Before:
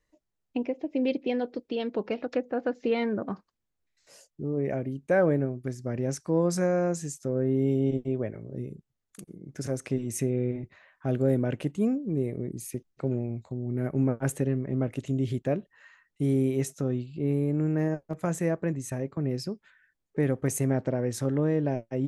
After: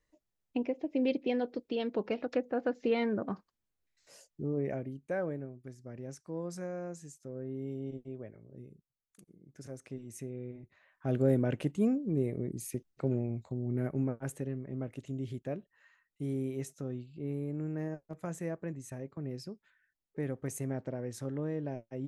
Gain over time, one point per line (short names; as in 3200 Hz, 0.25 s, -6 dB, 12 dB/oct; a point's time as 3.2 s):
4.48 s -3 dB
5.39 s -14 dB
10.59 s -14 dB
11.17 s -2.5 dB
13.75 s -2.5 dB
14.22 s -10 dB